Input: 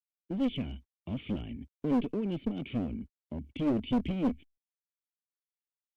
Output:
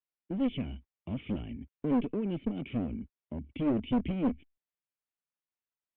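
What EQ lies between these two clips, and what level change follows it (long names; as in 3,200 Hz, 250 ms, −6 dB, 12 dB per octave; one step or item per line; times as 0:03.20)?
low-pass filter 3,000 Hz 24 dB per octave
0.0 dB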